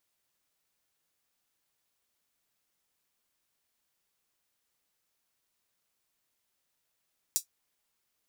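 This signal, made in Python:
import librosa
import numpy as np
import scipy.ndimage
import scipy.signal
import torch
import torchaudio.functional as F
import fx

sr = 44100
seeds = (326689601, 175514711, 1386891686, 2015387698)

y = fx.drum_hat(sr, length_s=0.24, from_hz=6000.0, decay_s=0.11)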